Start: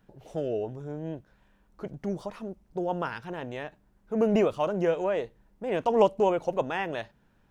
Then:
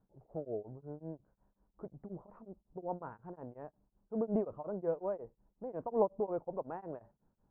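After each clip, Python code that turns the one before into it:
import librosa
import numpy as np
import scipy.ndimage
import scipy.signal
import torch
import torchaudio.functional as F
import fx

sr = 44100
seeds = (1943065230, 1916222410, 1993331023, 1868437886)

y = scipy.signal.sosfilt(scipy.signal.butter(4, 1100.0, 'lowpass', fs=sr, output='sos'), x)
y = y * np.abs(np.cos(np.pi * 5.5 * np.arange(len(y)) / sr))
y = y * librosa.db_to_amplitude(-7.5)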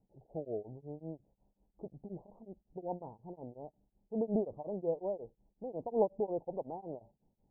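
y = scipy.signal.sosfilt(scipy.signal.ellip(4, 1.0, 50, 840.0, 'lowpass', fs=sr, output='sos'), x)
y = y * librosa.db_to_amplitude(1.0)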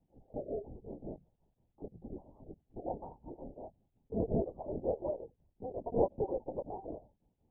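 y = fx.hum_notches(x, sr, base_hz=50, count=3)
y = fx.lpc_vocoder(y, sr, seeds[0], excitation='whisper', order=16)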